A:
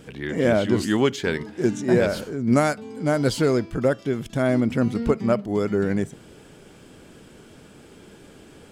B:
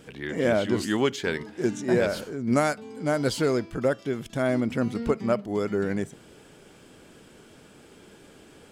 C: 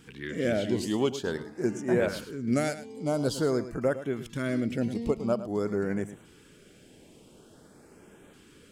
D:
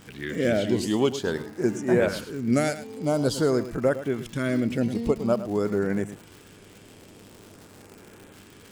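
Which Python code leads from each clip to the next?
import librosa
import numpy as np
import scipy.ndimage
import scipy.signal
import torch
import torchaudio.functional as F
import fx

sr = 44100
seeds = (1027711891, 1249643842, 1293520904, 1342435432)

y1 = fx.low_shelf(x, sr, hz=270.0, db=-5.0)
y1 = y1 * 10.0 ** (-2.0 / 20.0)
y2 = fx.filter_lfo_notch(y1, sr, shape='saw_up', hz=0.48, low_hz=570.0, high_hz=5300.0, q=0.94)
y2 = y2 + 10.0 ** (-13.5 / 20.0) * np.pad(y2, (int(107 * sr / 1000.0), 0))[:len(y2)]
y2 = y2 * 10.0 ** (-2.5 / 20.0)
y3 = fx.dmg_crackle(y2, sr, seeds[0], per_s=180.0, level_db=-41.0)
y3 = fx.dmg_buzz(y3, sr, base_hz=100.0, harmonics=28, level_db=-60.0, tilt_db=-4, odd_only=False)
y3 = y3 * 10.0 ** (4.0 / 20.0)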